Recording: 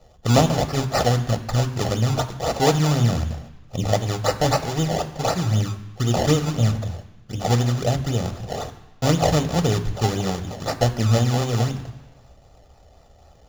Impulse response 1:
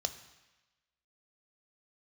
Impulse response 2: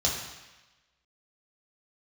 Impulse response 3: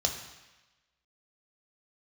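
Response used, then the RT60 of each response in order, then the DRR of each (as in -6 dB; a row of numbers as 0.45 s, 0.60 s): 1; 1.1 s, 1.1 s, 1.1 s; 9.5 dB, -3.0 dB, 3.0 dB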